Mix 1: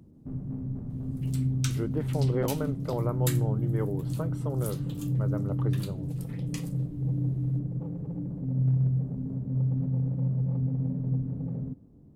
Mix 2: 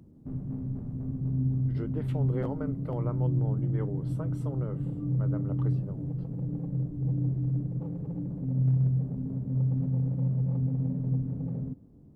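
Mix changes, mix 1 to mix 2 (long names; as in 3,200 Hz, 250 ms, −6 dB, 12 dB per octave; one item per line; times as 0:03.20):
speech −5.0 dB
second sound: muted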